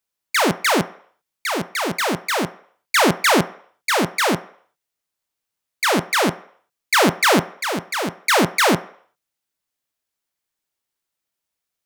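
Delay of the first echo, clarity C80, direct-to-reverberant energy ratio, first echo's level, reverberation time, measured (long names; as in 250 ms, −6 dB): no echo audible, 20.0 dB, 11.0 dB, no echo audible, 0.60 s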